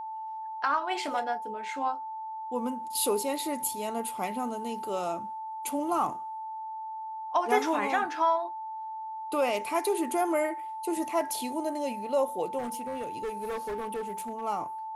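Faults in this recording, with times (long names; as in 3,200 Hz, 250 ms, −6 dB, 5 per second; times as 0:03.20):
whistle 880 Hz −35 dBFS
0:12.58–0:14.44: clipping −30 dBFS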